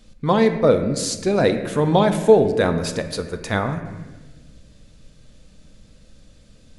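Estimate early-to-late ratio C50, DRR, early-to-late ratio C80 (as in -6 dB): 9.5 dB, 7.0 dB, 10.5 dB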